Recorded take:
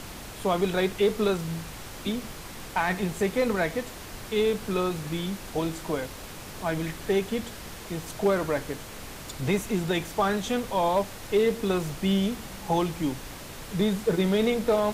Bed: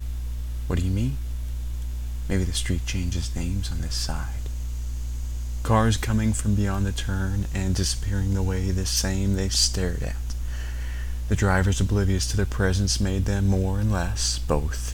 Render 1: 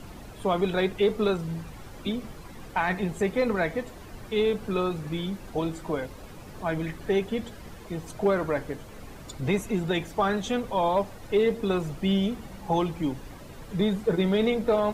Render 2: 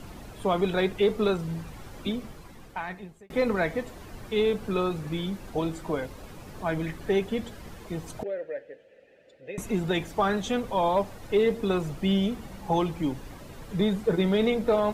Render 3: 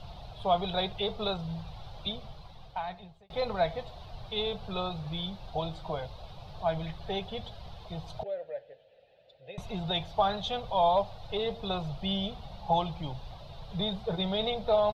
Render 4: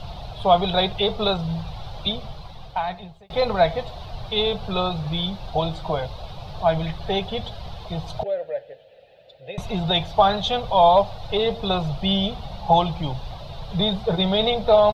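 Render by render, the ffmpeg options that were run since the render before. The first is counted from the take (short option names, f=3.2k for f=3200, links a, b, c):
-af "afftdn=nr=11:nf=-41"
-filter_complex "[0:a]asettb=1/sr,asplit=3[a][b][c];[a]atrim=end=8.234[d];[b]atrim=start=8.23:end=9.58,asetpts=PTS-STARTPTS,afade=t=in:d=0.004:c=qsin,afade=t=out:st=1.346:d=0.004:c=qsin,asplit=3[e][f][g];[e]bandpass=f=530:t=q:w=8,volume=0dB[h];[f]bandpass=f=1.84k:t=q:w=8,volume=-6dB[i];[g]bandpass=f=2.48k:t=q:w=8,volume=-9dB[j];[h][i][j]amix=inputs=3:normalize=0[k];[c]atrim=start=9.576[l];[d][k]acrossfade=d=0.004:c1=hsin:c2=qsin[m];[m][l]acrossfade=d=0.004:c1=qsin:c2=hsin,asplit=2[n][o];[n]atrim=end=3.3,asetpts=PTS-STARTPTS,afade=t=out:st=2.06:d=1.24[p];[o]atrim=start=3.3,asetpts=PTS-STARTPTS,afade=t=in:d=0.004:c=hsin[q];[p][q]concat=n=2:v=0:a=1"
-af "firequalizer=gain_entry='entry(140,0);entry(260,-20);entry(690,4);entry(1000,-3);entry(1800,-13);entry(3700,6);entry(7200,-20)':delay=0.05:min_phase=1"
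-af "volume=10dB"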